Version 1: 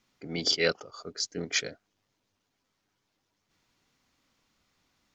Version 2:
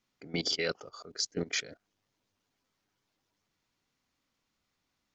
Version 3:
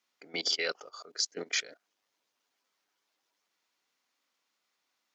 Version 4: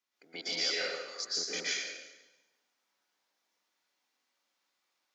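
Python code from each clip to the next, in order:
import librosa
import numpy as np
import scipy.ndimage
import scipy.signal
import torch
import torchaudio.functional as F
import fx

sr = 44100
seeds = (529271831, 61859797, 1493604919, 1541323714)

y1 = fx.level_steps(x, sr, step_db=17)
y1 = y1 * 10.0 ** (3.5 / 20.0)
y2 = scipy.signal.sosfilt(scipy.signal.bessel(2, 570.0, 'highpass', norm='mag', fs=sr, output='sos'), y1)
y2 = y2 * 10.0 ** (2.0 / 20.0)
y3 = fx.rev_plate(y2, sr, seeds[0], rt60_s=1.1, hf_ratio=0.9, predelay_ms=105, drr_db=-8.0)
y3 = y3 * 10.0 ** (-8.5 / 20.0)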